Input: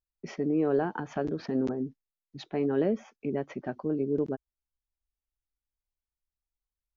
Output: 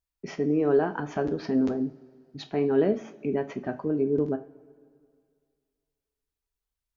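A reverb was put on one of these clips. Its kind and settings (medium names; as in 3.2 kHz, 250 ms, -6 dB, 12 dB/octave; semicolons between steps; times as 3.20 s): two-slope reverb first 0.3 s, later 2.2 s, from -21 dB, DRR 6.5 dB; trim +2.5 dB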